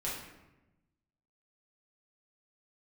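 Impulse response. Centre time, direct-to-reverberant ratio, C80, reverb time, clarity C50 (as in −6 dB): 56 ms, −7.5 dB, 5.5 dB, 1.0 s, 2.0 dB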